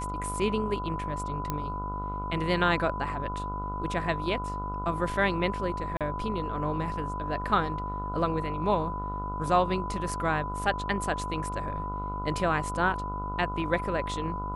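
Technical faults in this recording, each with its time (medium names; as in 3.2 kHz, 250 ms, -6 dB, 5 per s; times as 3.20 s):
buzz 50 Hz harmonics 29 -36 dBFS
whine 1 kHz -34 dBFS
1.50 s: pop -15 dBFS
5.97–6.01 s: dropout 37 ms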